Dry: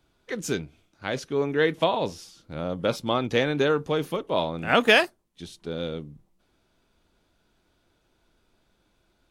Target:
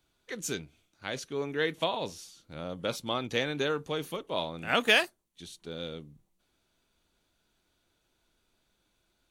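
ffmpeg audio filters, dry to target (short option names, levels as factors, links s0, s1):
-af "highshelf=f=2300:g=9,bandreject=f=5100:w=12,volume=0.376"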